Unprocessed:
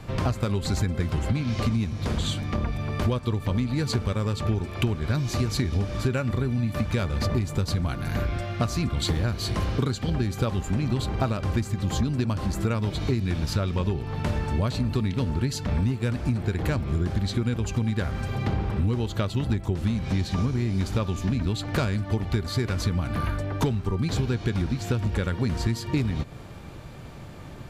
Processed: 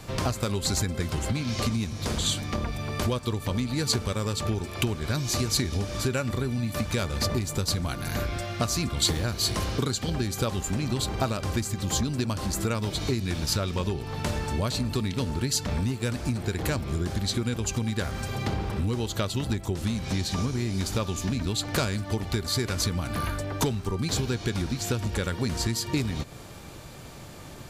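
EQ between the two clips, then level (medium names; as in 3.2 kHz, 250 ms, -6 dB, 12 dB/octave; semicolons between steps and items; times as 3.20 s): tone controls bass -4 dB, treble +10 dB; 0.0 dB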